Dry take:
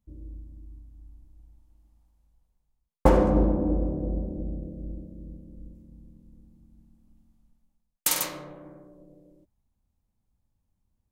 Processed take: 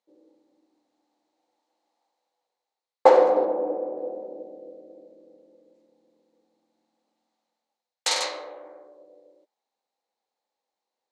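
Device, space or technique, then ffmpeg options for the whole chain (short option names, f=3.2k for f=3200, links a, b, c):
phone speaker on a table: -filter_complex "[0:a]highpass=f=410:w=0.5412,highpass=f=410:w=1.3066,equalizer=f=500:t=q:w=4:g=7,equalizer=f=800:t=q:w=4:g=8,equalizer=f=2k:t=q:w=4:g=4,equalizer=f=4.1k:t=q:w=4:g=9,lowpass=f=7.3k:w=0.5412,lowpass=f=7.3k:w=1.3066,asettb=1/sr,asplit=3[a][b][c];[a]atrim=end=3.454[d];[b]atrim=start=3.45:end=3.97,asetpts=PTS-STARTPTS,afade=t=in:d=0.004:c=qsin,afade=t=out:st=0.516:d=0.004:c=qsin,lowpass=f=2.6k:p=1[e];[c]atrim=start=3.966[f];[d][e]acrossfade=d=0.004:c1=hsin:c2=qsin[g];[g][f]acrossfade=d=0.004:c1=qsin:c2=hsin,volume=1.5dB"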